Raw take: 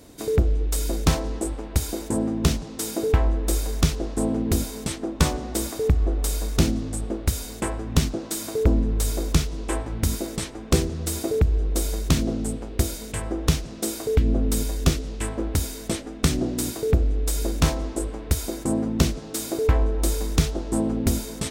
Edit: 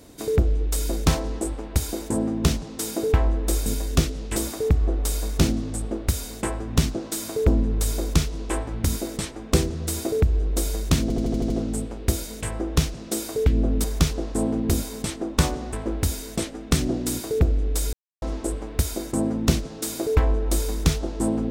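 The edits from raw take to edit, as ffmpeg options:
-filter_complex "[0:a]asplit=13[s0][s1][s2][s3][s4][s5][s6][s7][s8][s9][s10][s11][s12];[s0]atrim=end=3.662[s13];[s1]atrim=start=14.548:end=15.252[s14];[s2]atrim=start=5.548:end=12.292[s15];[s3]atrim=start=12.208:end=12.292[s16];[s4]atrim=start=12.208:end=12.292[s17];[s5]atrim=start=12.208:end=12.292[s18];[s6]atrim=start=12.208:end=12.292[s19];[s7]atrim=start=12.208:end=12.292[s20];[s8]atrim=start=12.208:end=14.552[s21];[s9]atrim=start=3.658:end=5.552[s22];[s10]atrim=start=15.248:end=17.45,asetpts=PTS-STARTPTS,afade=t=out:st=2.198:d=0.004:c=hsin[s23];[s11]atrim=start=17.45:end=17.74,asetpts=PTS-STARTPTS,volume=0[s24];[s12]atrim=start=17.74,asetpts=PTS-STARTPTS,afade=t=in:d=0.004:c=hsin[s25];[s13][s14]acrossfade=d=0.004:c1=hsin:c2=hsin[s26];[s26][s15]acrossfade=d=0.004:c1=hsin:c2=hsin[s27];[s27][s16]acrossfade=d=0.004:c1=hsin:c2=hsin[s28];[s28][s17]acrossfade=d=0.004:c1=hsin:c2=hsin[s29];[s29][s18]acrossfade=d=0.004:c1=hsin:c2=hsin[s30];[s30][s19]acrossfade=d=0.004:c1=hsin:c2=hsin[s31];[s31][s20]acrossfade=d=0.004:c1=hsin:c2=hsin[s32];[s32][s21]acrossfade=d=0.004:c1=hsin:c2=hsin[s33];[s33][s22]acrossfade=d=0.004:c1=hsin:c2=hsin[s34];[s23][s24][s25]concat=n=3:v=0:a=1[s35];[s34][s35]acrossfade=d=0.004:c1=hsin:c2=hsin"

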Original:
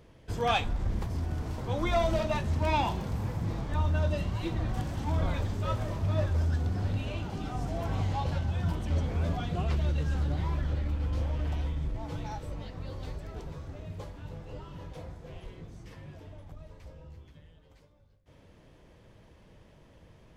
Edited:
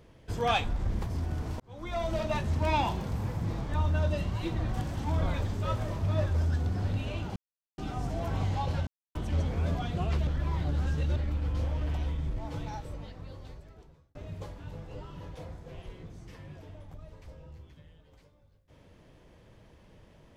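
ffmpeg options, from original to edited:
-filter_complex "[0:a]asplit=8[s0][s1][s2][s3][s4][s5][s6][s7];[s0]atrim=end=1.6,asetpts=PTS-STARTPTS,afade=t=out:st=1.596:d=0.004:c=hsin[s8];[s1]atrim=start=1.6:end=7.36,asetpts=PTS-STARTPTS,afade=t=in:d=0.78,afade=t=out:st=5.756:d=0.004:c=hsin,apad=pad_dur=0.42[s9];[s2]atrim=start=7.36:end=8.45,asetpts=PTS-STARTPTS,afade=t=in:d=0.004:c=hsin,afade=t=out:st=1.086:d=0.004:c=hsin[s10];[s3]atrim=start=8.45:end=8.73,asetpts=PTS-STARTPTS,volume=0[s11];[s4]atrim=start=8.73:end=9.852,asetpts=PTS-STARTPTS,afade=t=in:d=0.004:c=hsin[s12];[s5]atrim=start=9.848:end=10.742,asetpts=PTS-STARTPTS,areverse[s13];[s6]atrim=start=10.738:end=13.73,asetpts=PTS-STARTPTS,afade=t=out:st=1.452:d=1.54[s14];[s7]atrim=start=13.73,asetpts=PTS-STARTPTS,afade=t=in:d=0.004:c=hsin[s15];[s8][s9][s10][s11][s12]concat=n=5:v=0:a=1[s16];[s16][s13]acrossfade=d=0.004:c1=hsin:c2=hsin[s17];[s14][s15]concat=n=2:v=0:a=1[s18];[s17][s18]acrossfade=d=0.004:c1=hsin:c2=hsin"

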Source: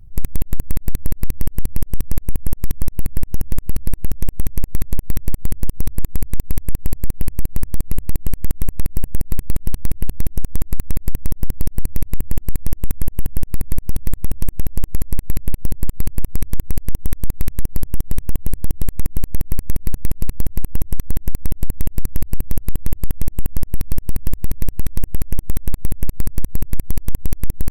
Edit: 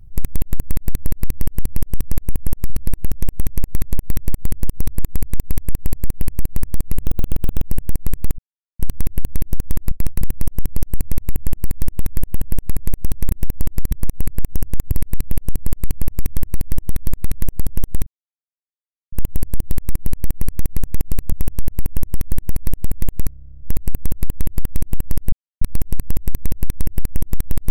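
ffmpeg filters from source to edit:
-filter_complex "[0:a]asplit=25[s0][s1][s2][s3][s4][s5][s6][s7][s8][s9][s10][s11][s12][s13][s14][s15][s16][s17][s18][s19][s20][s21][s22][s23][s24];[s0]atrim=end=2.702[s25];[s1]atrim=start=3.698:end=8.014[s26];[s2]atrim=start=8.01:end=8.89,asetpts=PTS-STARTPTS,asetrate=62181,aresample=44100,atrim=end_sample=27523,asetpts=PTS-STARTPTS[s27];[s3]atrim=start=8.886:end=9.64,asetpts=PTS-STARTPTS,afade=t=out:st=0.75:d=0.004:c=hsin,apad=pad_dur=0.41[s28];[s4]atrim=start=9.64:end=10.762,asetpts=PTS-STARTPTS,afade=t=in:d=0.004:c=hsin[s29];[s5]atrim=start=10.758:end=11.062,asetpts=PTS-STARTPTS,areverse[s30];[s6]atrim=start=11.058:end=14.162[s31];[s7]atrim=start=14.478:end=15.082[s32];[s8]atrim=start=2.698:end=3.702[s33];[s9]atrim=start=15.078:end=18.23,asetpts=PTS-STARTPTS,afade=t=out:st=3.148:d=0.004:c=hsin,apad=pad_dur=1.06[s34];[s10]atrim=start=18.23:end=20.432,asetpts=PTS-STARTPTS,afade=t=in:d=0.004:c=hsin[s35];[s11]atrim=start=14.158:end=14.482[s36];[s12]atrim=start=20.428:end=22.092[s37];[s13]atrim=start=22.058:end=22.092[s38];[s14]atrim=start=22.058:end=22.092[s39];[s15]atrim=start=22.058:end=22.092[s40];[s16]atrim=start=22.058:end=22.092[s41];[s17]atrim=start=22.058:end=22.092[s42];[s18]atrim=start=22.058:end=22.092[s43];[s19]atrim=start=22.058:end=22.092[s44];[s20]atrim=start=22.058:end=22.092[s45];[s21]atrim=start=22.058:end=22.092[s46];[s22]atrim=start=22.058:end=22.092[s47];[s23]atrim=start=22.058:end=23.78,asetpts=PTS-STARTPTS,afade=t=out:st=1.718:d=0.004:c=hsin,apad=pad_dur=0.29[s48];[s24]atrim=start=23.78,asetpts=PTS-STARTPTS,afade=t=in:d=0.004:c=hsin[s49];[s25][s26]acrossfade=d=0.004:c1=hsin:c2=hsin[s50];[s50][s27]acrossfade=d=0.004:c1=hsin:c2=hsin[s51];[s28][s29]concat=n=2:v=0:a=1[s52];[s51][s52]acrossfade=d=0.004:c1=hsin:c2=hsin[s53];[s53][s30]acrossfade=d=0.004:c1=hsin:c2=hsin[s54];[s54][s31]acrossfade=d=0.004:c1=hsin:c2=hsin[s55];[s55][s32]acrossfade=d=0.004:c1=hsin:c2=hsin[s56];[s56][s33]acrossfade=d=0.004:c1=hsin:c2=hsin[s57];[s34][s35]concat=n=2:v=0:a=1[s58];[s57][s58]acrossfade=d=0.004:c1=hsin:c2=hsin[s59];[s59][s36]acrossfade=d=0.004:c1=hsin:c2=hsin[s60];[s60][s37]acrossfade=d=0.004:c1=hsin:c2=hsin[s61];[s61][s38]acrossfade=d=0.004:c1=hsin:c2=hsin[s62];[s62][s39]acrossfade=d=0.004:c1=hsin:c2=hsin[s63];[s63][s40]acrossfade=d=0.004:c1=hsin:c2=hsin[s64];[s64][s41]acrossfade=d=0.004:c1=hsin:c2=hsin[s65];[s65][s42]acrossfade=d=0.004:c1=hsin:c2=hsin[s66];[s66][s43]acrossfade=d=0.004:c1=hsin:c2=hsin[s67];[s67][s44]acrossfade=d=0.004:c1=hsin:c2=hsin[s68];[s68][s45]acrossfade=d=0.004:c1=hsin:c2=hsin[s69];[s69][s46]acrossfade=d=0.004:c1=hsin:c2=hsin[s70];[s70][s47]acrossfade=d=0.004:c1=hsin:c2=hsin[s71];[s48][s49]concat=n=2:v=0:a=1[s72];[s71][s72]acrossfade=d=0.004:c1=hsin:c2=hsin"

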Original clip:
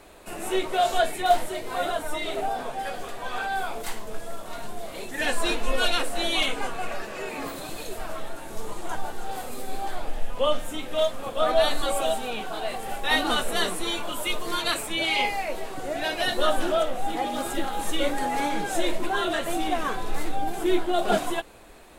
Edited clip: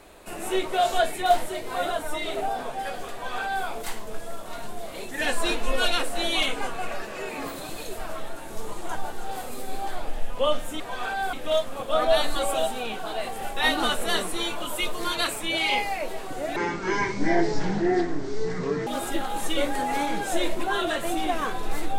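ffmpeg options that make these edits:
-filter_complex "[0:a]asplit=5[s0][s1][s2][s3][s4];[s0]atrim=end=10.802[s5];[s1]atrim=start=3.128:end=3.662[s6];[s2]atrim=start=10.798:end=16.034[s7];[s3]atrim=start=16.03:end=17.3,asetpts=PTS-STARTPTS,asetrate=24255,aresample=44100[s8];[s4]atrim=start=17.296[s9];[s5][s6]acrossfade=d=0.004:c1=hsin:c2=hsin[s10];[s10][s7]acrossfade=d=0.004:c1=hsin:c2=hsin[s11];[s11][s8]acrossfade=d=0.004:c1=hsin:c2=hsin[s12];[s12][s9]acrossfade=d=0.004:c1=hsin:c2=hsin"

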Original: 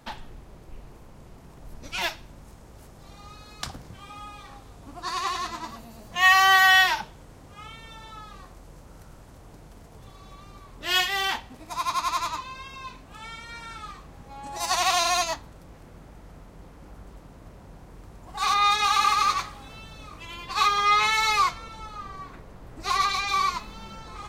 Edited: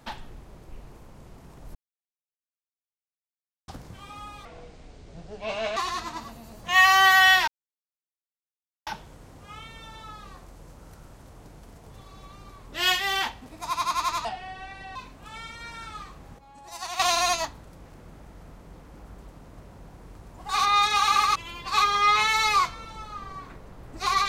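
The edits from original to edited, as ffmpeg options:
-filter_complex "[0:a]asplit=11[s0][s1][s2][s3][s4][s5][s6][s7][s8][s9][s10];[s0]atrim=end=1.75,asetpts=PTS-STARTPTS,afade=t=out:st=1.746:d=0.004:c=hsin[s11];[s1]atrim=start=1.75:end=3.68,asetpts=PTS-STARTPTS,volume=0[s12];[s2]atrim=start=3.68:end=4.454,asetpts=PTS-STARTPTS,afade=t=in:d=0.004:c=hsin[s13];[s3]atrim=start=4.45:end=5.24,asetpts=PTS-STARTPTS,asetrate=26460,aresample=44100[s14];[s4]atrim=start=5.236:end=6.95,asetpts=PTS-STARTPTS,afade=t=out:st=1.71:d=0.004:c=hsin,apad=pad_dur=1.39[s15];[s5]atrim=start=6.95:end=12.334,asetpts=PTS-STARTPTS,afade=t=in:d=0.004:c=hsin[s16];[s6]atrim=start=12.33:end=12.84,asetpts=PTS-STARTPTS,asetrate=31752,aresample=44100[s17];[s7]atrim=start=12.836:end=14.272[s18];[s8]atrim=start=14.268:end=14.882,asetpts=PTS-STARTPTS,volume=0.299[s19];[s9]atrim=start=14.878:end=19.242[s20];[s10]atrim=start=20.188[s21];[s11][s12][s13]concat=n=3:v=0:a=1[s22];[s22][s14]acrossfade=d=0.004:c1=hsin:c2=hsin[s23];[s15][s16]concat=n=2:v=0:a=1[s24];[s23][s24]acrossfade=d=0.004:c1=hsin:c2=hsin[s25];[s25][s17]acrossfade=d=0.004:c1=hsin:c2=hsin[s26];[s26][s18]acrossfade=d=0.004:c1=hsin:c2=hsin[s27];[s27][s19]acrossfade=d=0.004:c1=hsin:c2=hsin[s28];[s28][s20]acrossfade=d=0.004:c1=hsin:c2=hsin[s29];[s29][s21]acrossfade=d=0.004:c1=hsin:c2=hsin"

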